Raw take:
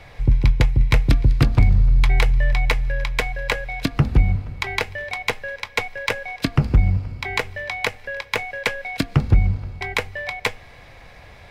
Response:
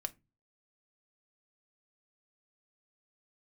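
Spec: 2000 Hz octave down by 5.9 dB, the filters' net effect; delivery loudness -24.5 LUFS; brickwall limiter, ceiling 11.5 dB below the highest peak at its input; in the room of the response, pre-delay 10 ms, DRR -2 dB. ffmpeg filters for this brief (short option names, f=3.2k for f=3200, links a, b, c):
-filter_complex "[0:a]equalizer=f=2k:t=o:g=-7,alimiter=limit=-15.5dB:level=0:latency=1,asplit=2[a][b];[1:a]atrim=start_sample=2205,adelay=10[c];[b][c]afir=irnorm=-1:irlink=0,volume=3dB[d];[a][d]amix=inputs=2:normalize=0,volume=0.5dB"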